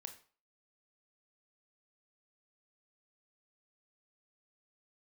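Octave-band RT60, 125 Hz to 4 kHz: 0.35 s, 0.35 s, 0.40 s, 0.45 s, 0.40 s, 0.35 s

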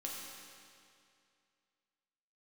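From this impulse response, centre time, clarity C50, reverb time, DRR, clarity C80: 120 ms, 0.0 dB, 2.4 s, -3.5 dB, 1.0 dB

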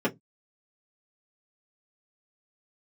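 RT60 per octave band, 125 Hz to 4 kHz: 0.30 s, 0.25 s, 0.20 s, 0.10 s, 0.10 s, 0.10 s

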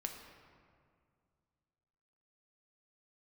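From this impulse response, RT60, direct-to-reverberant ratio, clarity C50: 2.2 s, 3.0 dB, 5.5 dB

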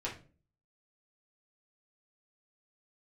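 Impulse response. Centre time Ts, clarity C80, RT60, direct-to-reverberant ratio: 21 ms, 15.5 dB, 0.40 s, -6.0 dB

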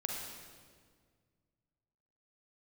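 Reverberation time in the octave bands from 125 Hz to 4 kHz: 2.7 s, 2.3 s, 2.0 s, 1.7 s, 1.5 s, 1.4 s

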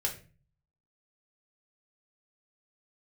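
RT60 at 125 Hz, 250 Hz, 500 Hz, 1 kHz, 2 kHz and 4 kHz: 0.75 s, 0.60 s, 0.40 s, 0.30 s, 0.35 s, 0.30 s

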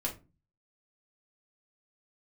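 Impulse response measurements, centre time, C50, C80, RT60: 16 ms, 12.0 dB, 19.5 dB, 0.30 s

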